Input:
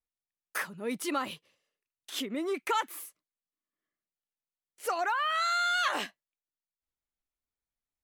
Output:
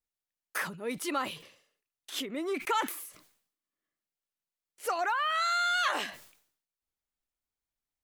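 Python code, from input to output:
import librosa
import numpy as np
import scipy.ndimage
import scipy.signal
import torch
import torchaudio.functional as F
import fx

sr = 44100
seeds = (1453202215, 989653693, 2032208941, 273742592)

y = fx.dynamic_eq(x, sr, hz=200.0, q=1.5, threshold_db=-48.0, ratio=4.0, max_db=-5)
y = fx.sustainer(y, sr, db_per_s=96.0)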